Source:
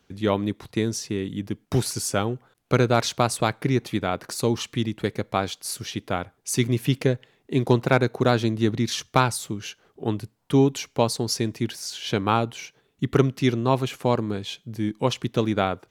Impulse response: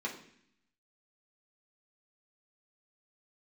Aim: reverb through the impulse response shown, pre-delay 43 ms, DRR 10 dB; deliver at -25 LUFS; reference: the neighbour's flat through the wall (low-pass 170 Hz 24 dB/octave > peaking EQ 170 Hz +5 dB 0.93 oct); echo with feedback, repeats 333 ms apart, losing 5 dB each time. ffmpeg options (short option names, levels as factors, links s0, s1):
-filter_complex "[0:a]aecho=1:1:333|666|999|1332|1665|1998|2331:0.562|0.315|0.176|0.0988|0.0553|0.031|0.0173,asplit=2[s0][s1];[1:a]atrim=start_sample=2205,adelay=43[s2];[s1][s2]afir=irnorm=-1:irlink=0,volume=0.224[s3];[s0][s3]amix=inputs=2:normalize=0,lowpass=f=170:w=0.5412,lowpass=f=170:w=1.3066,equalizer=f=170:t=o:w=0.93:g=5,volume=1.33"